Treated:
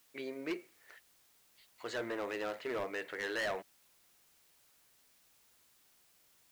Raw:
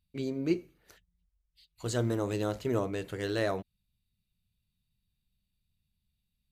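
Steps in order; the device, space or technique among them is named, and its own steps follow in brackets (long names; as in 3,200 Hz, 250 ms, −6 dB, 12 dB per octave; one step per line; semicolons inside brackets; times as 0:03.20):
drive-through speaker (band-pass filter 520–3,200 Hz; parametric band 1,900 Hz +9 dB 0.58 octaves; hard clipping −32 dBFS, distortion −8 dB; white noise bed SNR 25 dB)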